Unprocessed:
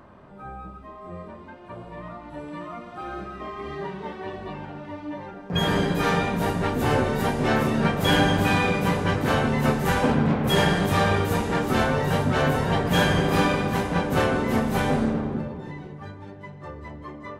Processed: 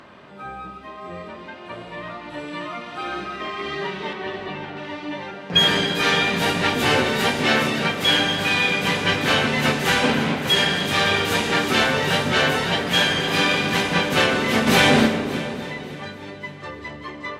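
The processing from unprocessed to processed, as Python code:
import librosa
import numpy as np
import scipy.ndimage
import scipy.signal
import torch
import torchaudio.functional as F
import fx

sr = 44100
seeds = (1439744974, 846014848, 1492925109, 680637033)

y = fx.weighting(x, sr, curve='D')
y = fx.rider(y, sr, range_db=4, speed_s=0.5)
y = fx.high_shelf(y, sr, hz=3500.0, db=-10.0, at=(4.13, 4.77))
y = fx.echo_heads(y, sr, ms=285, heads='first and second', feedback_pct=40, wet_db=-14.5)
y = fx.env_flatten(y, sr, amount_pct=70, at=(14.66, 15.06), fade=0.02)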